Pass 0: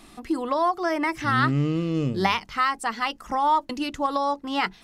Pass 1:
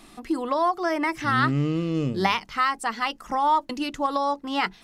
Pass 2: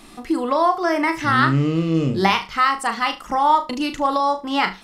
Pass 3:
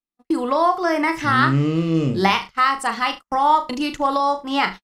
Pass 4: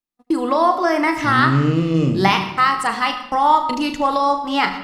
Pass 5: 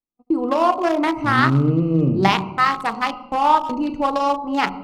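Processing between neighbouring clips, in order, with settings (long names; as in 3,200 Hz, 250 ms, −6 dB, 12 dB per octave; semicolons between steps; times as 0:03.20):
parametric band 71 Hz −7.5 dB 0.84 octaves
flutter between parallel walls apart 6.3 metres, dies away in 0.26 s; level +4.5 dB
noise gate −29 dBFS, range −54 dB
convolution reverb RT60 1.0 s, pre-delay 75 ms, DRR 10.5 dB; level +1.5 dB
adaptive Wiener filter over 25 samples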